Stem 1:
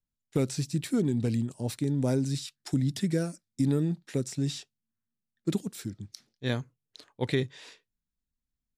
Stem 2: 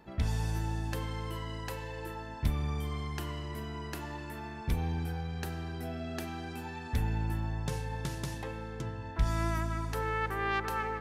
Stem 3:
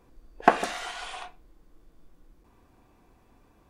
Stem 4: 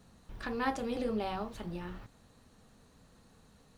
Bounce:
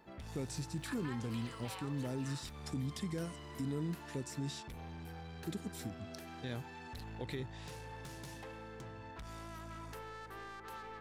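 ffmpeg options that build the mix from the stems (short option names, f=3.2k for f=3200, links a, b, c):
-filter_complex "[0:a]alimiter=limit=-21.5dB:level=0:latency=1,volume=-6dB[a];[1:a]lowshelf=f=170:g=-8,acompressor=threshold=-35dB:ratio=12,asoftclip=type=tanh:threshold=-39.5dB,volume=-3.5dB[b];[3:a]highpass=f=970:w=0.5412,highpass=f=970:w=1.3066,alimiter=level_in=10dB:limit=-24dB:level=0:latency=1:release=358,volume=-10dB,adelay=450,volume=0.5dB[c];[a][b][c]amix=inputs=3:normalize=0,alimiter=level_in=6dB:limit=-24dB:level=0:latency=1:release=354,volume=-6dB"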